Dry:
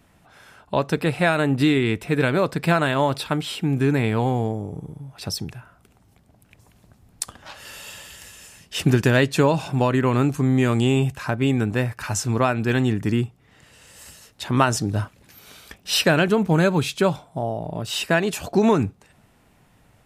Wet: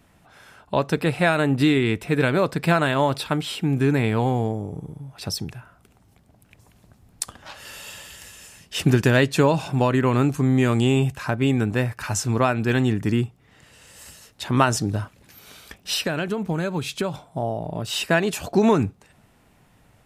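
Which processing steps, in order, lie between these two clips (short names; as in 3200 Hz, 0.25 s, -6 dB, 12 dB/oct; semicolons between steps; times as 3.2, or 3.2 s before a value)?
14.95–17.14 compressor 6:1, threshold -22 dBFS, peak gain reduction 9 dB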